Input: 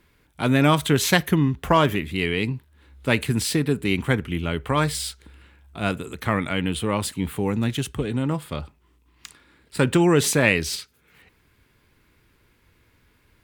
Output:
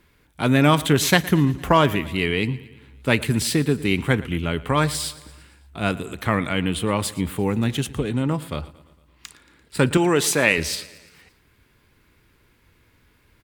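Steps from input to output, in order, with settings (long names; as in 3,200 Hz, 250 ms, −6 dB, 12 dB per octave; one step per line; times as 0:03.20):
0:09.97–0:10.58: high-pass filter 320 Hz 6 dB per octave
repeating echo 114 ms, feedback 58%, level −19.5 dB
level +1.5 dB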